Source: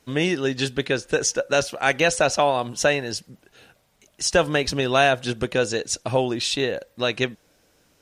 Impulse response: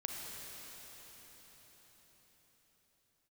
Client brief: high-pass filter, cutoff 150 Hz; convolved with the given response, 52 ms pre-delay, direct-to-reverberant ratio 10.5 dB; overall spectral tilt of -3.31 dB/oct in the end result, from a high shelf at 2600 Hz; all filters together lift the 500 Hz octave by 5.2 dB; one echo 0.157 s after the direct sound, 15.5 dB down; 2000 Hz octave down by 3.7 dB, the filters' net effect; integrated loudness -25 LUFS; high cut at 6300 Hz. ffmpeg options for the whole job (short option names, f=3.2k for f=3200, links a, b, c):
-filter_complex "[0:a]highpass=150,lowpass=6.3k,equalizer=f=500:t=o:g=6.5,equalizer=f=2k:t=o:g=-8,highshelf=f=2.6k:g=4.5,aecho=1:1:157:0.168,asplit=2[a][b];[1:a]atrim=start_sample=2205,adelay=52[c];[b][c]afir=irnorm=-1:irlink=0,volume=-11.5dB[d];[a][d]amix=inputs=2:normalize=0,volume=-5.5dB"